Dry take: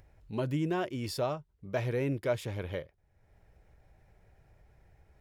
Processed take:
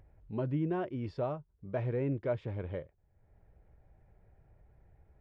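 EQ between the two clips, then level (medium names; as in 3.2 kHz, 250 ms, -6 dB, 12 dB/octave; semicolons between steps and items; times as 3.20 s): tape spacing loss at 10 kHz 43 dB; 0.0 dB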